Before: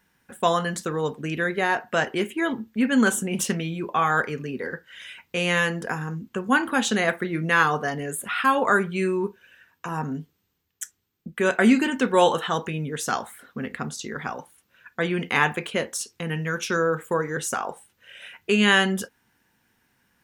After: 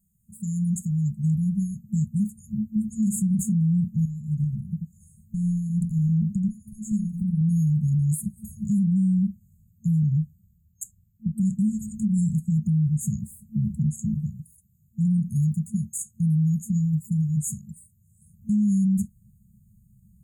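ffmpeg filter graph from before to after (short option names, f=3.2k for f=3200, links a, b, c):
-filter_complex "[0:a]asettb=1/sr,asplit=3[a][b][c];[a]atrim=end=4.054[d];[b]atrim=start=4.05:end=7.41,asetpts=PTS-STARTPTS,afade=t=in:d=0.004:c=qsin,afade=t=out:st=3.356:d=0.004:c=qsin,aecho=1:1:86:0.376,atrim=end_sample=148176,acompressor=threshold=-30dB:ratio=10:attack=3.2:release=140:knee=1:detection=peak[e];[c]atrim=start=7.406[f];[d][e]acrossfade=d=0.004:c1=hsin:c2=qsin[g];[g][f]acrossfade=d=0.004:c1=qsin:c2=hsin,asettb=1/sr,asplit=3[h][i][j];[h]atrim=end=14.144[k];[i]atrim=start=14.14:end=18.22,asetpts=PTS-STARTPTS,afade=t=in:d=0.004:c=qsin,afade=t=out:st=4.076:d=0.004:c=qsin,highpass=f=180:p=1,aecho=1:1:2.2:0.44,atrim=end_sample=179928[l];[j]atrim=start=18.216[m];[k][l]acrossfade=d=0.004:c1=hsin:c2=qsin[n];[n][m]acrossfade=d=0.004:c1=qsin:c2=hsin,afftfilt=real='re*(1-between(b*sr/4096,220,6500))':imag='im*(1-between(b*sr/4096,220,6500))':win_size=4096:overlap=0.75,asubboost=boost=12:cutoff=230,alimiter=limit=-17dB:level=0:latency=1:release=85"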